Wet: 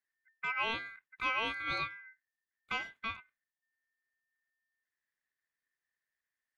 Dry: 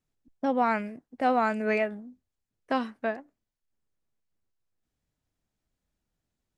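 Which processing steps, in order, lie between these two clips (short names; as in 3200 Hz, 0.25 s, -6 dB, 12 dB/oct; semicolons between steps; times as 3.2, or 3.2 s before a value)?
ring modulator 1800 Hz; gain -6.5 dB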